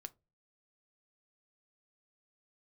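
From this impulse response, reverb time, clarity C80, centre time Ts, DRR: not exponential, 32.5 dB, 2 ms, 11.0 dB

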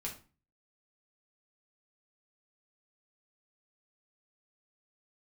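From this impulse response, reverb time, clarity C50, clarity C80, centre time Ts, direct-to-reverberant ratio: 0.35 s, 9.0 dB, 15.0 dB, 19 ms, -3.0 dB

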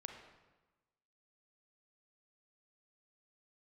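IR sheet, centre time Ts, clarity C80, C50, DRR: 35 ms, 7.0 dB, 5.0 dB, 3.5 dB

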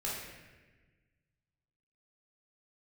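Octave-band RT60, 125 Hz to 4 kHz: 2.2, 1.8, 1.4, 1.1, 1.5, 1.0 s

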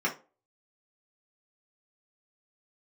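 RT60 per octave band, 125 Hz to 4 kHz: 0.30, 0.35, 0.35, 0.30, 0.25, 0.20 s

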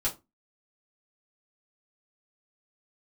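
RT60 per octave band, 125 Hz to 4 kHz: 0.30, 0.30, 0.25, 0.25, 0.20, 0.15 s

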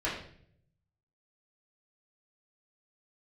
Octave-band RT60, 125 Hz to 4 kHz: 1.3, 0.85, 0.70, 0.50, 0.55, 0.50 s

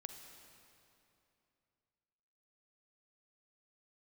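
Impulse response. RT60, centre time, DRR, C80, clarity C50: 2.8 s, 53 ms, 5.5 dB, 7.0 dB, 6.0 dB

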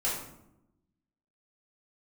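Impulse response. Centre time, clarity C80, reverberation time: 49 ms, 6.0 dB, 0.85 s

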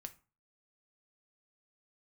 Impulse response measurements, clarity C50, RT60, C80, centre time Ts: 17.0 dB, 0.35 s, 23.0 dB, 5 ms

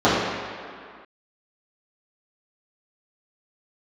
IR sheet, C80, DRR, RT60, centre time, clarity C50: 1.0 dB, -12.5 dB, 2.1 s, 0.115 s, -1.0 dB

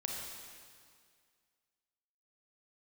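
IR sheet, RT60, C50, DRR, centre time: 2.0 s, 0.5 dB, -1.0 dB, 96 ms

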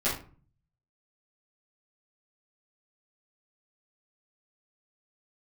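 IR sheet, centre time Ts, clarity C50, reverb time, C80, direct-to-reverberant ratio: 34 ms, 5.5 dB, 0.40 s, 12.0 dB, -11.5 dB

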